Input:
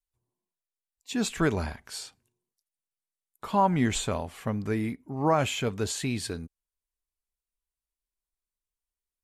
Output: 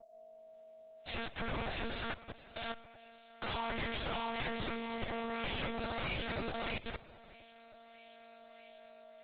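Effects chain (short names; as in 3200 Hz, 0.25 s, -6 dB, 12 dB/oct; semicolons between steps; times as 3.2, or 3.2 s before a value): spectral contrast lowered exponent 0.38; recorder AGC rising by 57 dB/s; resonator bank A2 fifth, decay 0.22 s; split-band echo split 380 Hz, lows 0.424 s, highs 0.634 s, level -3.5 dB; hard clip -27 dBFS, distortion -18 dB; whine 640 Hz -47 dBFS; level quantiser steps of 20 dB; on a send at -19 dB: reverb RT60 2.8 s, pre-delay 4 ms; on the sum: monotone LPC vocoder at 8 kHz 230 Hz; gain +4 dB; Opus 16 kbps 48000 Hz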